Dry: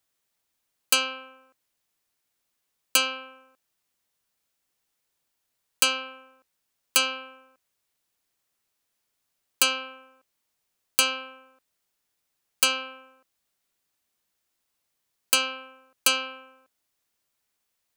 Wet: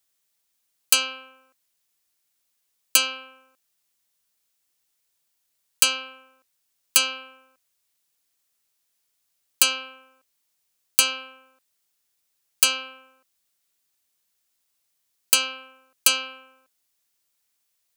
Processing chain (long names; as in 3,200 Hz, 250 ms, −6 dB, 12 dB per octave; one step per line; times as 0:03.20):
high-shelf EQ 2,600 Hz +9 dB
level −3.5 dB